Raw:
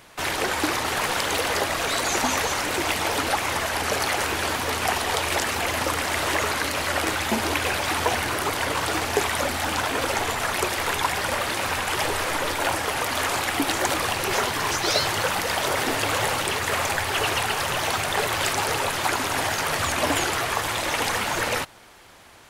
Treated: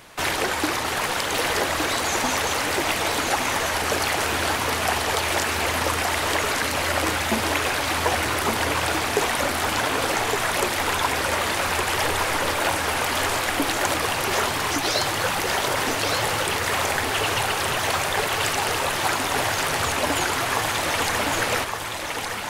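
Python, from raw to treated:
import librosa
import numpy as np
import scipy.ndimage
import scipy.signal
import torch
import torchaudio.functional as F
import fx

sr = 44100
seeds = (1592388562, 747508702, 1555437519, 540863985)

y = fx.rider(x, sr, range_db=10, speed_s=0.5)
y = y + 10.0 ** (-4.5 / 20.0) * np.pad(y, (int(1164 * sr / 1000.0), 0))[:len(y)]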